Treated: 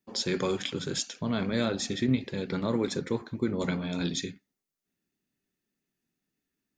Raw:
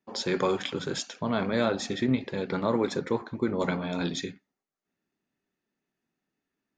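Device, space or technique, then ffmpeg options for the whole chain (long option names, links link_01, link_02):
smiley-face EQ: -af "lowshelf=frequency=110:gain=4.5,equalizer=frequency=870:width_type=o:width=1.8:gain=-7.5,highshelf=frequency=6200:gain=7"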